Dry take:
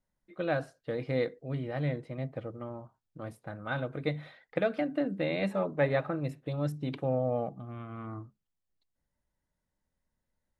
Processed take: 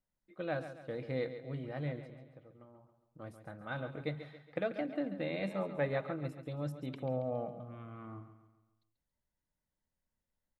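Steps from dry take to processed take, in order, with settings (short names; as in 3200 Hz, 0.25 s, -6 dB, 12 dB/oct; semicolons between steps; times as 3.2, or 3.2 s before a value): 2.05–3.2 compressor 8:1, threshold -47 dBFS, peak gain reduction 16 dB; on a send: feedback echo 0.138 s, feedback 45%, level -11 dB; on the sum: gain -6.5 dB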